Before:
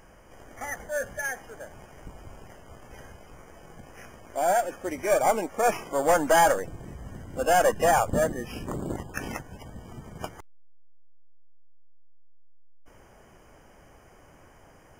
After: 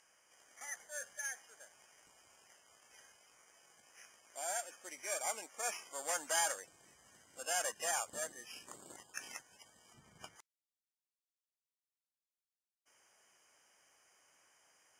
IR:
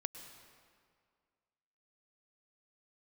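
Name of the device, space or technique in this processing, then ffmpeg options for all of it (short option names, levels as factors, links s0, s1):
piezo pickup straight into a mixer: -filter_complex "[0:a]lowpass=7700,aderivative,asettb=1/sr,asplit=3[s0][s1][s2];[s0]atrim=end=9.944[s3];[s1]atrim=start=9.94:end=10.36,asetpts=PTS-STARTPTS,afade=t=in:d=0.004:c=qsin,afade=t=out:st=0.416:d=0.004:c=qsin,bass=f=250:g=13,treble=f=4000:g=-6[s4];[s2]atrim=start=10.356[s5];[s3][s4]acrossfade=d=0.004:c1=hsin:c2=qsin[s6];[s6][s5]acrossfade=d=0.004:c1=qsin:c2=hsin"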